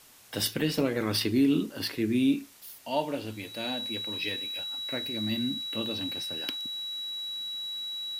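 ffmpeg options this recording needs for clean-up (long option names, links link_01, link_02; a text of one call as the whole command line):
ffmpeg -i in.wav -af "bandreject=frequency=3900:width=30,afwtdn=0.002" out.wav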